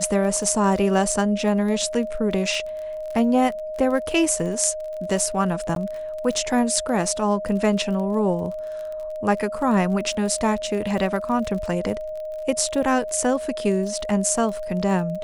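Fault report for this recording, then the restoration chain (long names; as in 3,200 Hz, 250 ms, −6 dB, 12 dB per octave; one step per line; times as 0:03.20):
surface crackle 32 per second −30 dBFS
whistle 620 Hz −28 dBFS
0:05.75–0:05.76: drop-out 12 ms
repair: click removal
notch filter 620 Hz, Q 30
repair the gap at 0:05.75, 12 ms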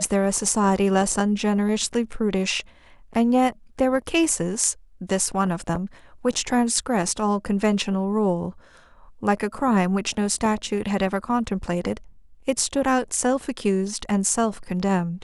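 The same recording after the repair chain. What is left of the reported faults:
none of them is left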